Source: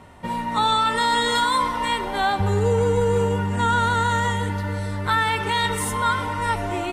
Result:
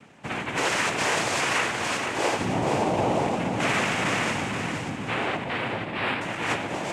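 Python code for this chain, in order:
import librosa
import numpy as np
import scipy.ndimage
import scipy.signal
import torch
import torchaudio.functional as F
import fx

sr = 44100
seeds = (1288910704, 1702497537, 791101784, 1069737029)

p1 = fx.tracing_dist(x, sr, depth_ms=0.37)
p2 = fx.steep_lowpass(p1, sr, hz=1400.0, slope=36, at=(4.89, 6.21))
p3 = fx.noise_vocoder(p2, sr, seeds[0], bands=4)
p4 = p3 + fx.echo_feedback(p3, sr, ms=475, feedback_pct=38, wet_db=-6.5, dry=0)
y = p4 * 10.0 ** (-4.5 / 20.0)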